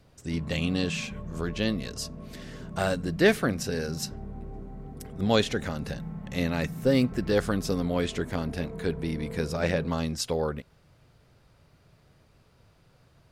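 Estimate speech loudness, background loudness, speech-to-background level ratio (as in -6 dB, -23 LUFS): -29.0 LUFS, -40.5 LUFS, 11.5 dB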